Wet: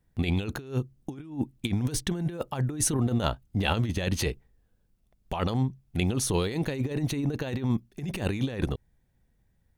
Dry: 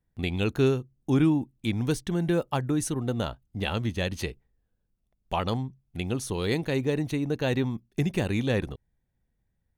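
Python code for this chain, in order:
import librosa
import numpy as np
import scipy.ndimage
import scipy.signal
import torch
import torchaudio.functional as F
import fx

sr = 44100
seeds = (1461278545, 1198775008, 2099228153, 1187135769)

y = fx.over_compress(x, sr, threshold_db=-30.0, ratio=-0.5)
y = F.gain(torch.from_numpy(y), 3.0).numpy()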